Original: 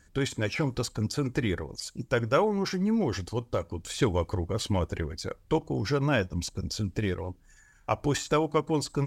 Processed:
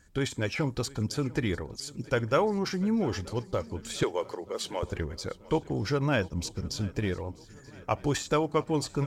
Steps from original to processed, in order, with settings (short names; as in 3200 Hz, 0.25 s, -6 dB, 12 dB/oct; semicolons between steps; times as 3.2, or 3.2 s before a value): 4.03–4.83 Chebyshev high-pass 380 Hz, order 3; swung echo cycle 0.931 s, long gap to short 3:1, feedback 50%, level -21.5 dB; gain -1 dB